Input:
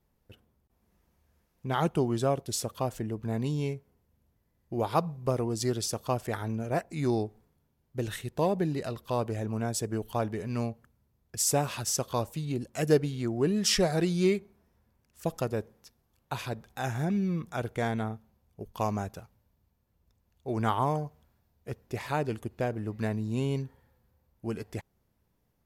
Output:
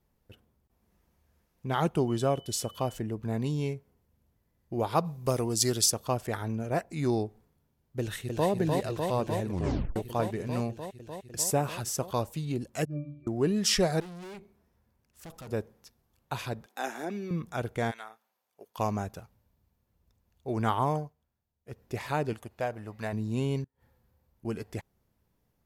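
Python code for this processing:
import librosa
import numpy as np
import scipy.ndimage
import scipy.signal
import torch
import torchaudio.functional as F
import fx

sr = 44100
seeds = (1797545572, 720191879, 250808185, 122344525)

y = fx.dmg_tone(x, sr, hz=3000.0, level_db=-52.0, at=(2.07, 2.97), fade=0.02)
y = fx.high_shelf(y, sr, hz=3300.0, db=12.0, at=(5.04, 5.89), fade=0.02)
y = fx.echo_throw(y, sr, start_s=7.99, length_s=0.51, ms=300, feedback_pct=85, wet_db=-3.5)
y = fx.dynamic_eq(y, sr, hz=4800.0, q=0.71, threshold_db=-42.0, ratio=4.0, max_db=-6, at=(11.43, 12.14))
y = fx.octave_resonator(y, sr, note='D', decay_s=0.55, at=(12.85, 13.27))
y = fx.tube_stage(y, sr, drive_db=42.0, bias=0.45, at=(14.0, 15.49))
y = fx.steep_highpass(y, sr, hz=240.0, slope=36, at=(16.66, 17.31))
y = fx.highpass(y, sr, hz=fx.line((17.9, 1400.0), (18.77, 520.0)), slope=12, at=(17.9, 18.77), fade=0.02)
y = fx.low_shelf_res(y, sr, hz=490.0, db=-7.0, q=1.5, at=(22.33, 23.13))
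y = fx.gate_flip(y, sr, shuts_db=-42.0, range_db=-28, at=(23.64, 24.45))
y = fx.edit(y, sr, fx.tape_stop(start_s=9.48, length_s=0.48),
    fx.fade_down_up(start_s=20.97, length_s=0.85, db=-14.0, fade_s=0.17), tone=tone)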